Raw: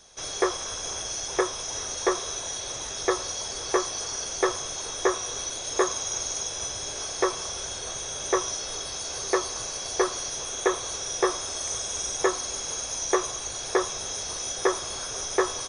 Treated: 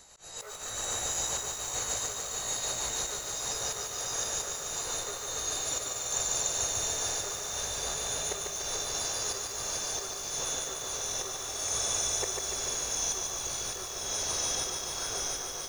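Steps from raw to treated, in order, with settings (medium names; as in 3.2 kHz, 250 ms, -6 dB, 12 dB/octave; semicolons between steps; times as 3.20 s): pitch bend over the whole clip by +2.5 st ending unshifted; slow attack 404 ms; bit-crushed delay 146 ms, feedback 80%, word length 8-bit, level -3.5 dB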